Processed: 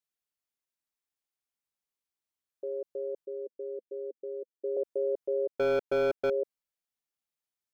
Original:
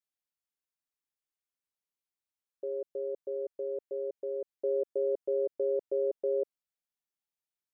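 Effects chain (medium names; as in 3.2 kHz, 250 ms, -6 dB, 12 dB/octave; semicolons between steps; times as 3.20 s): 3.25–4.77 s: elliptic band-pass 220–510 Hz; 5.49–6.30 s: waveshaping leveller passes 3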